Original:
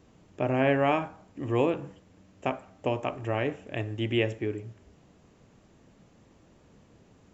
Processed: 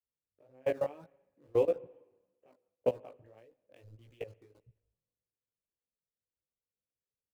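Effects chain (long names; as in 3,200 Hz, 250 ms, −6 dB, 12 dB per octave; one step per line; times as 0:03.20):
adaptive Wiener filter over 9 samples
downward expander −55 dBFS
in parallel at −10 dB: bit reduction 5 bits
on the sum: reverb reduction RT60 0.68 s
downward compressor 2 to 1, threshold −32 dBFS, peak gain reduction 8 dB
parametric band 500 Hz +14 dB 0.44 octaves
output level in coarse steps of 22 dB
chorus effect 1.7 Hz, delay 15.5 ms, depth 5.3 ms
on a send at −20 dB: convolution reverb RT60 3.7 s, pre-delay 54 ms
on the sum: dynamic equaliser 1,600 Hz, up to −3 dB, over −50 dBFS, Q 1.2
multiband upward and downward expander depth 100%
level −8.5 dB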